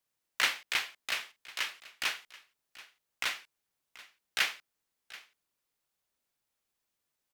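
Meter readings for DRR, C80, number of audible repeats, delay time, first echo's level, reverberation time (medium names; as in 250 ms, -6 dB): no reverb, no reverb, 1, 733 ms, -19.0 dB, no reverb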